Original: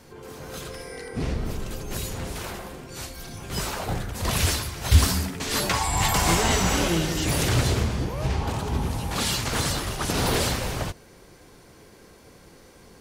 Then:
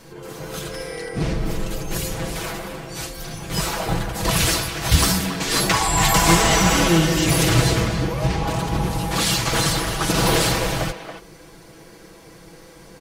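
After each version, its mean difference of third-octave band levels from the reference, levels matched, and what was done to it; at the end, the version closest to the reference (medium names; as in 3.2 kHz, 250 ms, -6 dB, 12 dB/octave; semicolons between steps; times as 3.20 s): 1.5 dB: comb 6.1 ms, depth 68%; speakerphone echo 280 ms, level -8 dB; trim +4 dB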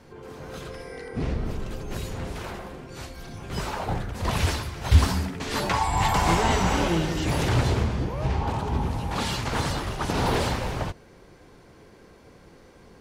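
3.0 dB: low-pass 2.7 kHz 6 dB/octave; dynamic bell 890 Hz, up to +5 dB, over -41 dBFS, Q 3.8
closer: first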